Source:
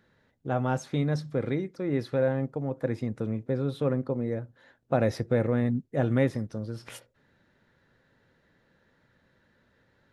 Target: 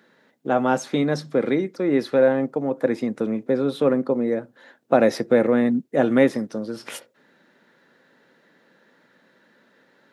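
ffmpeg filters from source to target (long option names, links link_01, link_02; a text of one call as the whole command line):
ffmpeg -i in.wav -af "highpass=frequency=200:width=0.5412,highpass=frequency=200:width=1.3066,volume=9dB" out.wav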